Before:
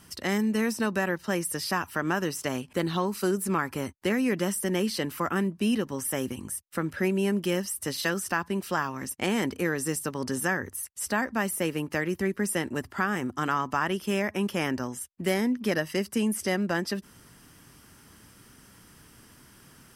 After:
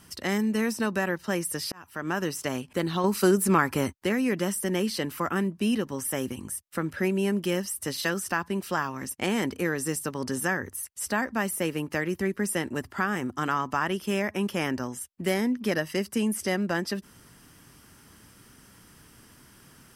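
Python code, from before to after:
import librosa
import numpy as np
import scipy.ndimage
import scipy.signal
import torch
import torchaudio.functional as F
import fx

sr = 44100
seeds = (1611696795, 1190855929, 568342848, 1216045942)

y = fx.edit(x, sr, fx.fade_in_span(start_s=1.72, length_s=0.5),
    fx.clip_gain(start_s=3.04, length_s=0.9, db=5.5), tone=tone)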